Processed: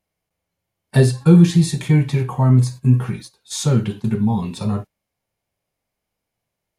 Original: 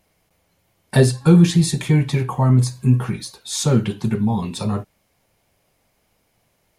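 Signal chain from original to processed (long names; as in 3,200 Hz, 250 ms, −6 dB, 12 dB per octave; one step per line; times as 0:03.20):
noise gate −30 dBFS, range −14 dB
harmonic and percussive parts rebalanced harmonic +6 dB
level −4.5 dB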